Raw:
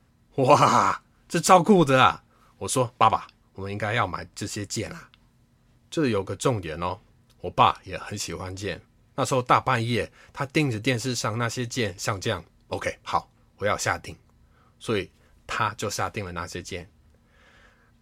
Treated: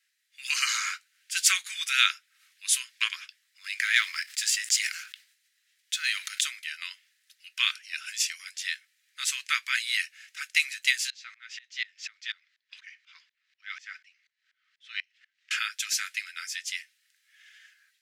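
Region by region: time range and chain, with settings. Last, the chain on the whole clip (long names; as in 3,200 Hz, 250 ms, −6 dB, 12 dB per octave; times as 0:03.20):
0:03.64–0:06.41: leveller curve on the samples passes 1 + level that may fall only so fast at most 71 dB per second
0:11.10–0:15.51: mu-law and A-law mismatch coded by mu + high-frequency loss of the air 180 metres + tremolo with a ramp in dB swelling 4.1 Hz, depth 25 dB
whole clip: Butterworth high-pass 1,700 Hz 48 dB per octave; automatic gain control gain up to 5 dB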